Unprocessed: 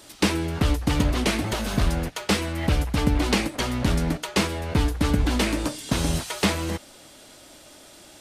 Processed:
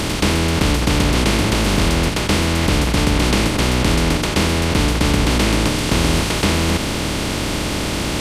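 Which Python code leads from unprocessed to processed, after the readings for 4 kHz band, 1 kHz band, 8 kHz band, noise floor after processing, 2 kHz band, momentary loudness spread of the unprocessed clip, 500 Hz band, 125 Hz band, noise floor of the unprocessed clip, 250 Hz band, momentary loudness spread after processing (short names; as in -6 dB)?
+9.5 dB, +8.0 dB, +9.5 dB, -22 dBFS, +9.0 dB, 4 LU, +8.0 dB, +7.5 dB, -49 dBFS, +7.0 dB, 5 LU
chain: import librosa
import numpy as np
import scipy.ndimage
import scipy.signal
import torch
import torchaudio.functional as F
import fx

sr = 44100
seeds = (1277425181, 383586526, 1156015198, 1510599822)

y = fx.bin_compress(x, sr, power=0.2)
y = y * librosa.db_to_amplitude(-1.0)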